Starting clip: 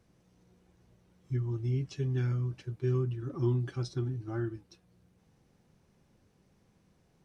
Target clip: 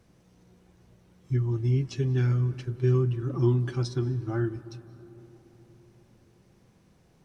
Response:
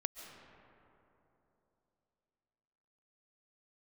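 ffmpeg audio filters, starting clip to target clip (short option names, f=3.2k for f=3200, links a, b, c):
-filter_complex "[0:a]asplit=2[a][b];[1:a]atrim=start_sample=2205,asetrate=34398,aresample=44100[c];[b][c]afir=irnorm=-1:irlink=0,volume=-9dB[d];[a][d]amix=inputs=2:normalize=0,volume=3.5dB"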